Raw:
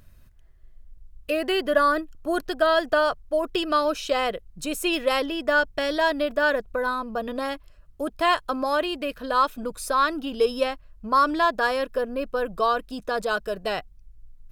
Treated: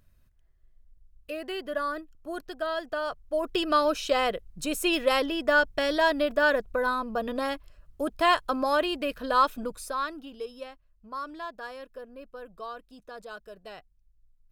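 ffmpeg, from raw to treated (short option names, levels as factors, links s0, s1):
-af "volume=0.891,afade=t=in:st=3:d=0.68:silence=0.334965,afade=t=out:st=9.56:d=0.32:silence=0.446684,afade=t=out:st=9.88:d=0.59:silence=0.375837"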